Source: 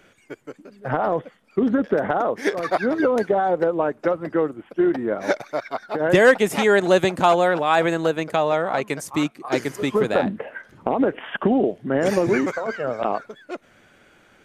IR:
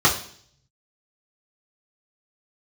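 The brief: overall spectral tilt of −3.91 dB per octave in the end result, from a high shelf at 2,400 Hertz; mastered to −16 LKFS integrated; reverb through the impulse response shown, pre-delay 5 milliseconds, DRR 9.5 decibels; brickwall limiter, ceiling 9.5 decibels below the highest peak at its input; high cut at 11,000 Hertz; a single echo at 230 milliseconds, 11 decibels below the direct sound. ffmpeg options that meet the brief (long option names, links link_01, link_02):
-filter_complex "[0:a]lowpass=11000,highshelf=frequency=2400:gain=6,alimiter=limit=-12.5dB:level=0:latency=1,aecho=1:1:230:0.282,asplit=2[link_01][link_02];[1:a]atrim=start_sample=2205,adelay=5[link_03];[link_02][link_03]afir=irnorm=-1:irlink=0,volume=-29.5dB[link_04];[link_01][link_04]amix=inputs=2:normalize=0,volume=7dB"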